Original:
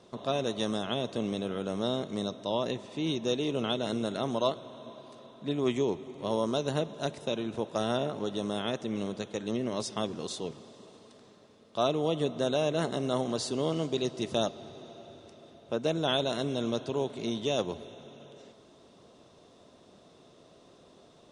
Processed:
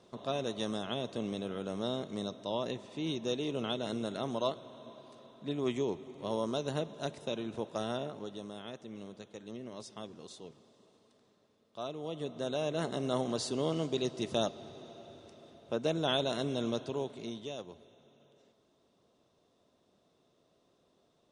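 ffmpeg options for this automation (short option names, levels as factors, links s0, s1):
-af "volume=1.88,afade=t=out:st=7.63:d=0.91:silence=0.398107,afade=t=in:st=11.96:d=1.2:silence=0.316228,afade=t=out:st=16.67:d=0.93:silence=0.266073"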